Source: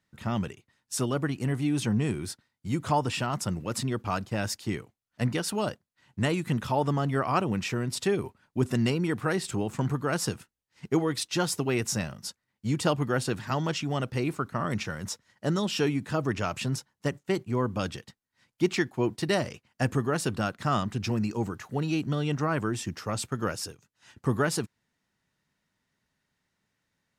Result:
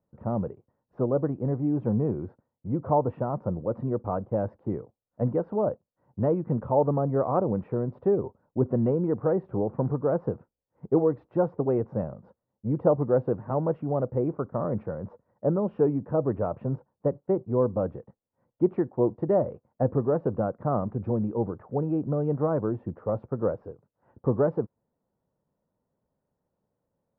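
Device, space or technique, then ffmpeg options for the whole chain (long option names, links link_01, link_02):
under water: -af "lowpass=frequency=1000:width=0.5412,lowpass=frequency=1000:width=1.3066,equalizer=frequency=520:width_type=o:width=0.57:gain=10"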